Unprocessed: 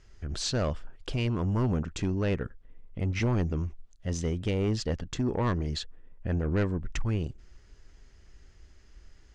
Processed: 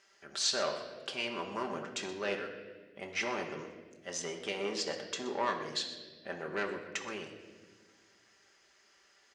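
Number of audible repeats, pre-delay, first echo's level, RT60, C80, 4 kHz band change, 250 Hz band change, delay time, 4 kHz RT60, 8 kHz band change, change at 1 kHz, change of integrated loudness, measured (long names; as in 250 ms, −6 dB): 1, 5 ms, −16.0 dB, 1.5 s, 8.5 dB, +2.5 dB, −12.5 dB, 124 ms, 1.2 s, +2.0 dB, +1.0 dB, −5.5 dB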